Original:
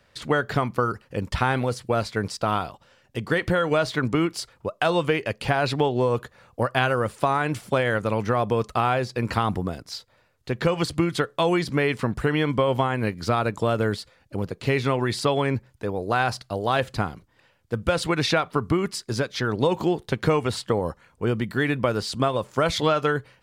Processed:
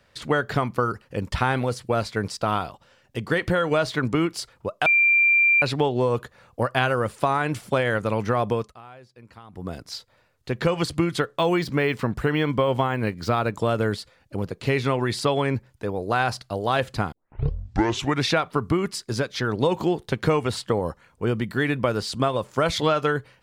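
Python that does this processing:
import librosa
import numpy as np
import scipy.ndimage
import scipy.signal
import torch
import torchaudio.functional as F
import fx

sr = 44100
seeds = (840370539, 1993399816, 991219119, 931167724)

y = fx.resample_linear(x, sr, factor=2, at=(11.21, 13.57))
y = fx.edit(y, sr, fx.bleep(start_s=4.86, length_s=0.76, hz=2370.0, db=-14.5),
    fx.fade_down_up(start_s=8.51, length_s=1.26, db=-22.5, fade_s=0.25),
    fx.tape_start(start_s=17.12, length_s=1.14), tone=tone)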